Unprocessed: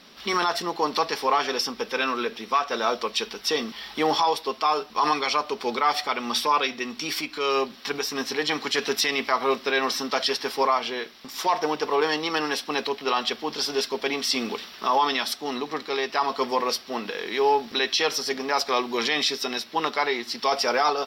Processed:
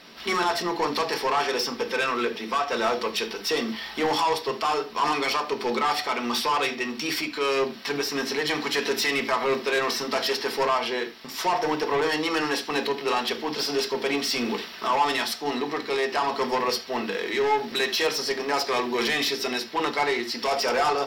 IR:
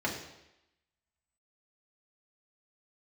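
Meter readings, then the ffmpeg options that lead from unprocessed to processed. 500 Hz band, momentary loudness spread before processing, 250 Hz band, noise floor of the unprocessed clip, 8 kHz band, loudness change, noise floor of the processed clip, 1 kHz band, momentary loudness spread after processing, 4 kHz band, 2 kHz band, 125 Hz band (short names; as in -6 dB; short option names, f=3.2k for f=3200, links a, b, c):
+0.5 dB, 6 LU, +1.5 dB, -46 dBFS, -1.0 dB, -0.5 dB, -40 dBFS, -1.5 dB, 4 LU, -1.5 dB, +1.0 dB, +3.5 dB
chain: -filter_complex "[0:a]asoftclip=type=tanh:threshold=-22.5dB,asplit=2[a][b];[1:a]atrim=start_sample=2205,afade=t=out:st=0.14:d=0.01,atrim=end_sample=6615[c];[b][c]afir=irnorm=-1:irlink=0,volume=-9dB[d];[a][d]amix=inputs=2:normalize=0"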